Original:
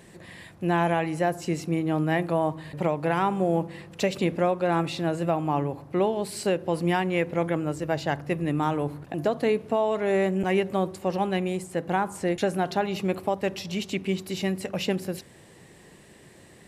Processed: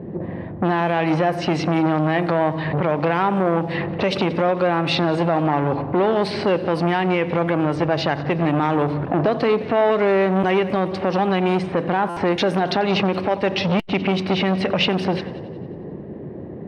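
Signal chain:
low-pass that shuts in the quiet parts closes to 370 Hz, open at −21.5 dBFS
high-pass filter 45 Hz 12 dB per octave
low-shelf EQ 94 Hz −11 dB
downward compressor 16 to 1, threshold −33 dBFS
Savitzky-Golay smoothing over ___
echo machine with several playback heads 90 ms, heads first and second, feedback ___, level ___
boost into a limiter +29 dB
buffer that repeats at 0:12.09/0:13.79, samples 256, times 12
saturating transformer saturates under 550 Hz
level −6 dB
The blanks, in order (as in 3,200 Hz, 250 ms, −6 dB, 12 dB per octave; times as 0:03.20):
15 samples, 48%, −22.5 dB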